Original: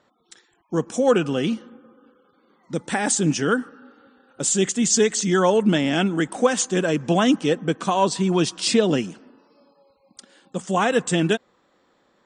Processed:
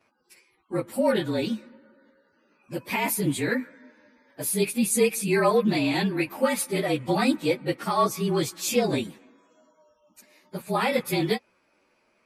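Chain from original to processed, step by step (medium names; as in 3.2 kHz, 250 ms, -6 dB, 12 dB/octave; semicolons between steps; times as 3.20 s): frequency axis rescaled in octaves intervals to 111%; graphic EQ with 31 bands 160 Hz -5 dB, 1 kHz +3 dB, 2.5 kHz +10 dB; trim -1.5 dB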